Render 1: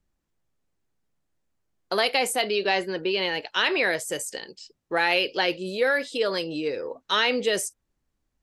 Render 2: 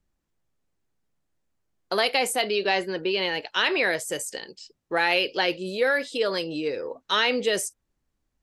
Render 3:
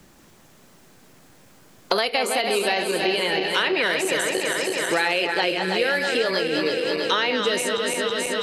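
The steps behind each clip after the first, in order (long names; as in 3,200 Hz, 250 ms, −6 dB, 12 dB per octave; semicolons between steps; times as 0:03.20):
no processing that can be heard
feedback delay that plays each chunk backwards 162 ms, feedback 78%, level −6.5 dB; multiband upward and downward compressor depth 100%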